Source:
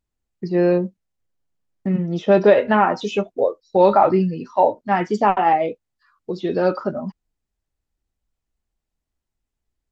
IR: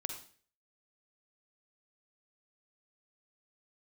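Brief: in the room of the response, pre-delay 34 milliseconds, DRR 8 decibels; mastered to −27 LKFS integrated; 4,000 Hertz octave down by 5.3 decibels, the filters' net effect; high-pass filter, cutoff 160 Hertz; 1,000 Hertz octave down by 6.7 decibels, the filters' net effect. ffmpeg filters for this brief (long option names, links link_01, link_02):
-filter_complex "[0:a]highpass=160,equalizer=frequency=1000:width_type=o:gain=-9,equalizer=frequency=4000:width_type=o:gain=-6.5,asplit=2[link_01][link_02];[1:a]atrim=start_sample=2205,adelay=34[link_03];[link_02][link_03]afir=irnorm=-1:irlink=0,volume=-8dB[link_04];[link_01][link_04]amix=inputs=2:normalize=0,volume=-6dB"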